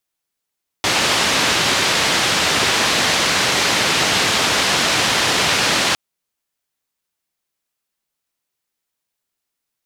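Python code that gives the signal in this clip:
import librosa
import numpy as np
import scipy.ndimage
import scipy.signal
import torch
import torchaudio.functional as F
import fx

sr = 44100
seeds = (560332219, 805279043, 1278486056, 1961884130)

y = fx.band_noise(sr, seeds[0], length_s=5.11, low_hz=93.0, high_hz=4500.0, level_db=-17.0)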